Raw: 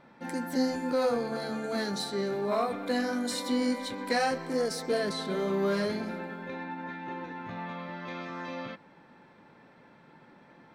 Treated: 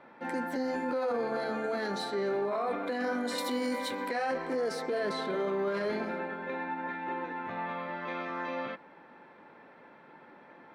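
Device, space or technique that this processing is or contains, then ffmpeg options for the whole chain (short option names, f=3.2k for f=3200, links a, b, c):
DJ mixer with the lows and highs turned down: -filter_complex "[0:a]acrossover=split=270 3000:gain=0.224 1 0.224[a][b][c];[a][b][c]amix=inputs=3:normalize=0,alimiter=level_in=4.5dB:limit=-24dB:level=0:latency=1:release=15,volume=-4.5dB,asettb=1/sr,asplit=3[d][e][f];[d]atrim=end=3.384[g];[e]atrim=start=3.38:end=4.08,asetpts=PTS-STARTPTS,afade=t=in:d=0.004:c=qsin,afade=t=out:st=0.696:d=0.004:c=qsin,aemphasis=mode=production:type=50fm[h];[f]atrim=start=4.076[i];[g][h]acrossfade=d=0.004:c1=hsin:c2=qsin[j];[j][i]acrossfade=d=0.004:c1=qsin:c2=hsin,volume=4dB"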